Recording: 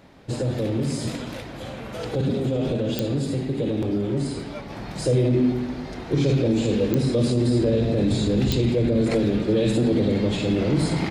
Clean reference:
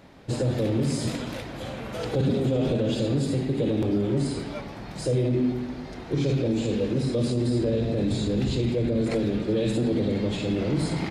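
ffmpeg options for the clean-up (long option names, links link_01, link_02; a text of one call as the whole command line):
ffmpeg -i in.wav -af "adeclick=threshold=4,asetnsamples=nb_out_samples=441:pad=0,asendcmd='4.7 volume volume -4dB',volume=0dB" out.wav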